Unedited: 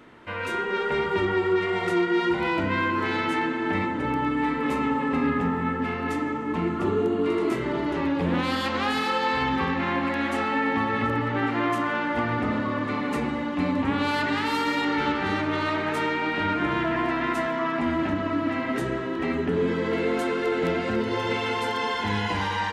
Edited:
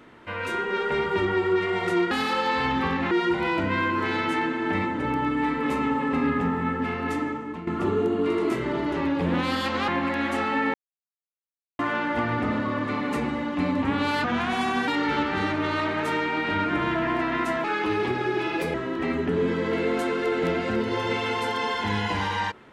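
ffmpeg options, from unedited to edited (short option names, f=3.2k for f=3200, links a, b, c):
-filter_complex "[0:a]asplit=11[a][b][c][d][e][f][g][h][i][j][k];[a]atrim=end=2.112[l];[b]atrim=start=8.878:end=9.882[m];[c]atrim=start=2.108:end=6.67,asetpts=PTS-STARTPTS,afade=t=out:st=4.122:d=0.44:silence=0.199526[n];[d]atrim=start=6.67:end=8.882,asetpts=PTS-STARTPTS,afade=t=in:d=0.004:c=hsin:silence=0.199526[o];[e]atrim=start=9.878:end=10.74,asetpts=PTS-STARTPTS,afade=t=out:st=0.858:d=0.004:c=hsin[p];[f]atrim=start=10.74:end=11.79,asetpts=PTS-STARTPTS,volume=0[q];[g]atrim=start=11.79:end=14.244,asetpts=PTS-STARTPTS,afade=t=in:d=0.004:c=hsin[r];[h]atrim=start=14.24:end=14.77,asetpts=PTS-STARTPTS,asetrate=36603,aresample=44100,atrim=end_sample=28160,asetpts=PTS-STARTPTS[s];[i]atrim=start=14.766:end=17.534[t];[j]atrim=start=17.53:end=18.94,asetpts=PTS-STARTPTS,asetrate=56448,aresample=44100[u];[k]atrim=start=18.936[v];[l][m]acrossfade=d=0.004:c1=hsin:c2=hsin[w];[n][o]concat=n=2:v=0:a=1[x];[w][x]acrossfade=d=0.004:c1=hsin:c2=hsin[y];[p][q][r]concat=n=3:v=0:a=1[z];[y][z]acrossfade=d=0.004:c1=hsin:c2=hsin[aa];[aa][s]acrossfade=d=0.004:c1=hsin:c2=hsin[ab];[ab][t]acrossfade=d=0.004:c1=hsin:c2=hsin[ac];[ac][u]acrossfade=d=0.004:c1=hsin:c2=hsin[ad];[ad][v]acrossfade=d=0.004:c1=hsin:c2=hsin"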